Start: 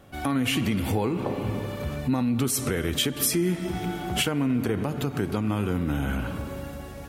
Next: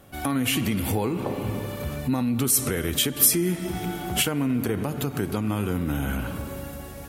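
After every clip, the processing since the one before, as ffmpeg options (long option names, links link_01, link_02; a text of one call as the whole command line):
ffmpeg -i in.wav -af "equalizer=frequency=13000:width=0.58:gain=9.5" out.wav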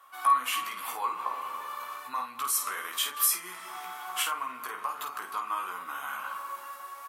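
ffmpeg -i in.wav -filter_complex "[0:a]highpass=frequency=1100:width_type=q:width=9.3,asplit=2[link_01][link_02];[link_02]aecho=0:1:16|51:0.562|0.447[link_03];[link_01][link_03]amix=inputs=2:normalize=0,volume=-8.5dB" out.wav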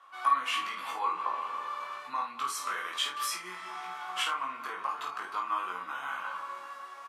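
ffmpeg -i in.wav -filter_complex "[0:a]highpass=110,lowpass=5200,asplit=2[link_01][link_02];[link_02]adelay=22,volume=-4dB[link_03];[link_01][link_03]amix=inputs=2:normalize=0,volume=-1dB" out.wav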